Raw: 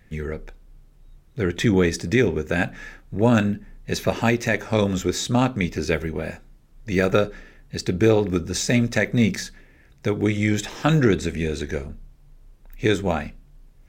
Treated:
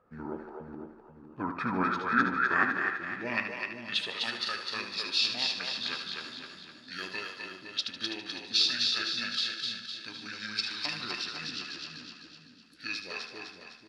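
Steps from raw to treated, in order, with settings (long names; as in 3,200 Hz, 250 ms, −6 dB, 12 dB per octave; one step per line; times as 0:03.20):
echo with a time of its own for lows and highs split 480 Hz, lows 487 ms, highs 254 ms, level −3.5 dB
band-pass filter sweep 840 Hz → 5,900 Hz, 0:00.96–0:04.44
formants moved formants −6 semitones
repeating echo 75 ms, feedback 44%, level −8.5 dB
level +4 dB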